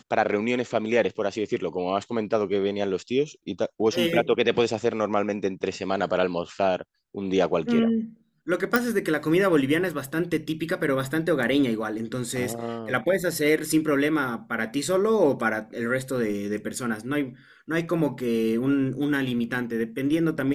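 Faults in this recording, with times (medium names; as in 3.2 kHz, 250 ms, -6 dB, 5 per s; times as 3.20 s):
8.76 s: pop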